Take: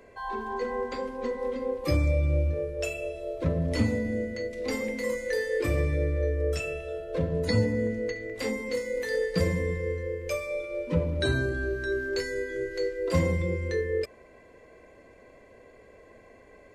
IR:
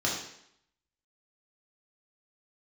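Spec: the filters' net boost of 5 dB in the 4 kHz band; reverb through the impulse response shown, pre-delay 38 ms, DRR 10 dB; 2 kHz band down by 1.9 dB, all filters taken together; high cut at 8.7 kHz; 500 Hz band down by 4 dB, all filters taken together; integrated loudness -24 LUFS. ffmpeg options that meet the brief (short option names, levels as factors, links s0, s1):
-filter_complex "[0:a]lowpass=8700,equalizer=f=500:t=o:g=-4.5,equalizer=f=2000:t=o:g=-3.5,equalizer=f=4000:t=o:g=6.5,asplit=2[s0][s1];[1:a]atrim=start_sample=2205,adelay=38[s2];[s1][s2]afir=irnorm=-1:irlink=0,volume=0.106[s3];[s0][s3]amix=inputs=2:normalize=0,volume=2.11"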